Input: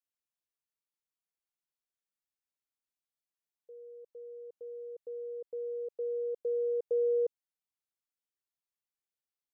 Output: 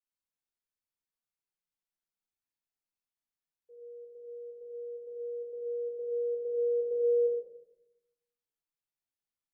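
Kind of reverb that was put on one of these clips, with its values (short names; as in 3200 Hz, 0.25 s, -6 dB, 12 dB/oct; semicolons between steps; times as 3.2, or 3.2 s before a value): shoebox room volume 250 m³, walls mixed, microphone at 4.1 m; gain -14.5 dB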